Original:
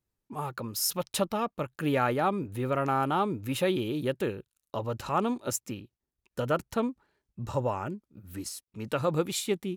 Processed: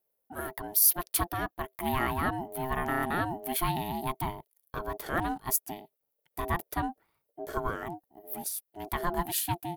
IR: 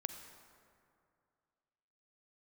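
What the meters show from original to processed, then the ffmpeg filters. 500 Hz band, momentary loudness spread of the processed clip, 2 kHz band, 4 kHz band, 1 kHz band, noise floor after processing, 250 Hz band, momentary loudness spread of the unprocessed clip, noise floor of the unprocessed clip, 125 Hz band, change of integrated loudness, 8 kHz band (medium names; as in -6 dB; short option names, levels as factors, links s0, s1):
-7.0 dB, 12 LU, +2.5 dB, -3.0 dB, -0.5 dB, -82 dBFS, -5.0 dB, 13 LU, under -85 dBFS, -3.5 dB, 0.0 dB, +4.0 dB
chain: -af "aeval=exprs='val(0)*sin(2*PI*520*n/s)':c=same,aexciter=amount=5.9:drive=6:freq=10000"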